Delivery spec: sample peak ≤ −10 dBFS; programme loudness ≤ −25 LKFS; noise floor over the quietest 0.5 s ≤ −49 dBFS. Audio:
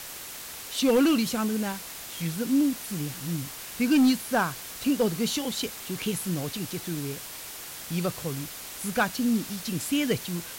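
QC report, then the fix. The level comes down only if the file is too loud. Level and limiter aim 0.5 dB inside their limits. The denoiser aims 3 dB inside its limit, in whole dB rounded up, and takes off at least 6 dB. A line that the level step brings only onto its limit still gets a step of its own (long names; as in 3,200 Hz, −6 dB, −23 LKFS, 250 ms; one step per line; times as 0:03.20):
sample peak −14.0 dBFS: in spec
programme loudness −28.0 LKFS: in spec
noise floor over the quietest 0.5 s −40 dBFS: out of spec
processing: broadband denoise 12 dB, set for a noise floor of −40 dBFS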